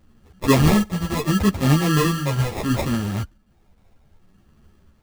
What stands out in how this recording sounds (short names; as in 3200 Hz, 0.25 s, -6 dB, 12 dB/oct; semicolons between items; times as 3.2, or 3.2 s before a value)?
phasing stages 2, 0.71 Hz, lowest notch 320–1100 Hz; aliases and images of a low sample rate 1500 Hz, jitter 0%; a shimmering, thickened sound